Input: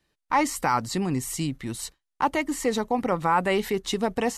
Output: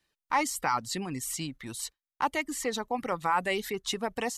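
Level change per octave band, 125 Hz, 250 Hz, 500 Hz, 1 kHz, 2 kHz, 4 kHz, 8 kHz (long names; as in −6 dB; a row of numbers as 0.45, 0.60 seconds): −10.0, −9.0, −7.0, −4.5, −2.5, −1.5, −1.5 decibels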